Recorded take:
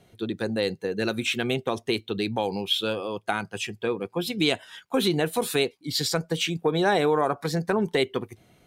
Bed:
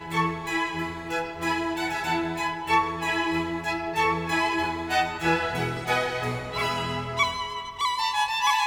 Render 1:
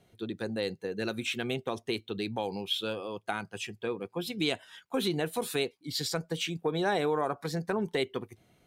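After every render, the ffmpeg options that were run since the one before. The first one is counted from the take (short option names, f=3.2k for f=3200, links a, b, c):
-af "volume=-6.5dB"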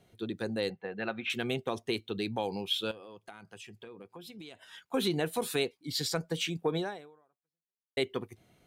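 -filter_complex "[0:a]asettb=1/sr,asplit=3[a][b][c];[a]atrim=end=0.704[d];[b]atrim=start=0.7:end=1.3,asetpts=PTS-STARTPTS,afade=t=in:d=0.004:c=qsin,afade=t=out:st=0.596:d=0.004:c=qsin,highpass=120,equalizer=f=130:t=q:w=4:g=-9,equalizer=f=290:t=q:w=4:g=-10,equalizer=f=430:t=q:w=4:g=-7,equalizer=f=760:t=q:w=4:g=8,equalizer=f=1.2k:t=q:w=4:g=4,equalizer=f=1.9k:t=q:w=4:g=3,lowpass=f=3.1k:w=0.5412,lowpass=f=3.1k:w=1.3066[e];[c]atrim=start=1.296[f];[d][e]acrossfade=d=0.004:c1=hsin:c2=qsin[g];[g][f]acrossfade=d=0.004:c1=qsin:c2=hsin,asettb=1/sr,asplit=3[h][i][j];[h]atrim=end=2.914[k];[i]atrim=start=2.91:end=4.62,asetpts=PTS-STARTPTS,afade=t=in:d=0.004:c=qsin,afade=t=out:st=1.706:d=0.004:c=qsin,acompressor=threshold=-45dB:ratio=6:attack=3.2:release=140:knee=1:detection=peak[l];[j]atrim=start=4.616[m];[k][l]acrossfade=d=0.004:c1=hsin:c2=qsin[n];[n][m]acrossfade=d=0.004:c1=qsin:c2=hsin,asplit=2[o][p];[o]atrim=end=7.97,asetpts=PTS-STARTPTS,afade=t=out:st=6.77:d=1.2:c=exp[q];[p]atrim=start=7.97,asetpts=PTS-STARTPTS,afade=t=in:d=0.004:c=hsin[r];[q][r]concat=n=2:v=0:a=1"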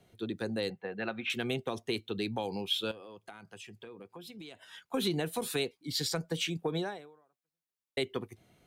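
-filter_complex "[0:a]acrossover=split=270|3000[a][b][c];[b]acompressor=threshold=-31dB:ratio=6[d];[a][d][c]amix=inputs=3:normalize=0"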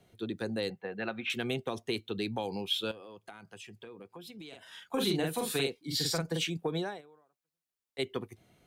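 -filter_complex "[0:a]asettb=1/sr,asplit=3[a][b][c];[a]atrim=end=4.484[d];[b]atrim=start=4.48:end=6.44,asetpts=PTS-STARTPTS,afade=t=in:d=0.004:c=qsin,afade=t=out:st=1.956:d=0.004:c=qsin,asplit=2[e][f];[f]adelay=44,volume=-2.5dB[g];[e][g]amix=inputs=2:normalize=0,atrim=end_sample=86436[h];[c]atrim=start=6.436[i];[d][h]acrossfade=d=0.004:c1=hsin:c2=qsin[j];[j][i]acrossfade=d=0.004:c1=qsin:c2=hsin,asplit=3[k][l][m];[k]afade=t=out:st=7:d=0.02[n];[l]acompressor=threshold=-52dB:ratio=6:attack=3.2:release=140:knee=1:detection=peak,afade=t=in:st=7:d=0.02,afade=t=out:st=7.98:d=0.02[o];[m]afade=t=in:st=7.98:d=0.02[p];[n][o][p]amix=inputs=3:normalize=0"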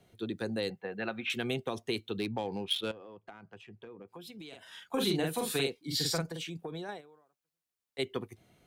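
-filter_complex "[0:a]asettb=1/sr,asplit=3[a][b][c];[a]atrim=end=2.194[d];[b]atrim=start=2.19:end=4.08,asetpts=PTS-STARTPTS,afade=t=in:d=0.004:c=qsin,afade=t=out:st=1.886:d=0.004:c=qsin,adynamicsmooth=sensitivity=6.5:basefreq=2.1k[e];[c]atrim=start=4.076[f];[d][e]acrossfade=d=0.004:c1=hsin:c2=qsin[g];[g][f]acrossfade=d=0.004:c1=qsin:c2=hsin,asettb=1/sr,asplit=3[h][i][j];[h]atrim=end=6.254[k];[i]atrim=start=6.25:end=6.89,asetpts=PTS-STARTPTS,afade=t=in:d=0.004:c=qsin,afade=t=out:st=0.636:d=0.004:c=qsin,acompressor=threshold=-38dB:ratio=3:attack=3.2:release=140:knee=1:detection=peak[l];[j]atrim=start=6.886[m];[k][l]acrossfade=d=0.004:c1=hsin:c2=qsin[n];[n][m]acrossfade=d=0.004:c1=qsin:c2=hsin"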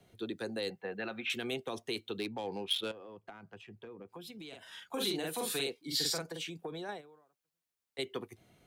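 -filter_complex "[0:a]acrossover=split=260|3300[a][b][c];[a]acompressor=threshold=-50dB:ratio=6[d];[b]alimiter=level_in=5.5dB:limit=-24dB:level=0:latency=1:release=20,volume=-5.5dB[e];[d][e][c]amix=inputs=3:normalize=0"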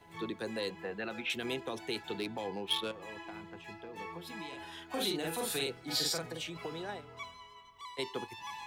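-filter_complex "[1:a]volume=-21.5dB[a];[0:a][a]amix=inputs=2:normalize=0"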